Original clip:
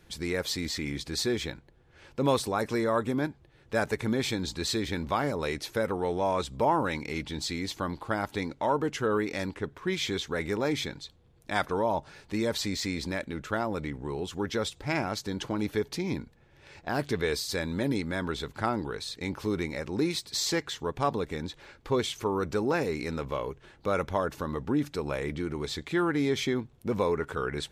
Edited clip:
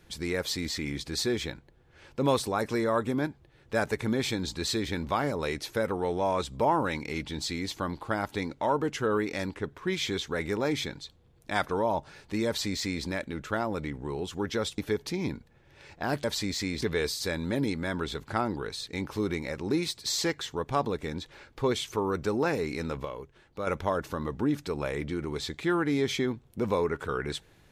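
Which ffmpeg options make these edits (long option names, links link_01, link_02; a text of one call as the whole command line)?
ffmpeg -i in.wav -filter_complex "[0:a]asplit=6[link_01][link_02][link_03][link_04][link_05][link_06];[link_01]atrim=end=14.782[link_07];[link_02]atrim=start=15.638:end=17.102[link_08];[link_03]atrim=start=12.468:end=13.052[link_09];[link_04]atrim=start=17.098:end=23.332[link_10];[link_05]atrim=start=23.328:end=23.952,asetpts=PTS-STARTPTS,volume=-6dB[link_11];[link_06]atrim=start=23.948[link_12];[link_07][link_08]acrossfade=duration=0.004:curve1=hsin:curve2=hsin[link_13];[link_13][link_09]acrossfade=duration=0.004:curve1=hsin:curve2=hsin[link_14];[link_14][link_10]acrossfade=duration=0.004:curve1=hsin:curve2=hsin[link_15];[link_15][link_11]acrossfade=duration=0.004:curve1=hsin:curve2=hsin[link_16];[link_16][link_12]acrossfade=duration=0.004:curve1=hsin:curve2=hsin" out.wav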